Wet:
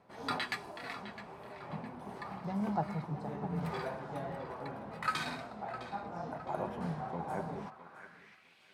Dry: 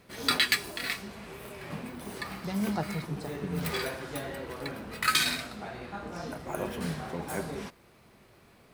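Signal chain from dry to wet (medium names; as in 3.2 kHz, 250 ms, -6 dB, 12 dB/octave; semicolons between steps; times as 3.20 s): tone controls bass +14 dB, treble +7 dB; tape echo 660 ms, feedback 49%, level -11.5 dB, low-pass 4 kHz; dynamic bell 130 Hz, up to +6 dB, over -37 dBFS, Q 0.88; band-pass sweep 830 Hz -> 2.9 kHz, 7.61–8.59 s; trim +2 dB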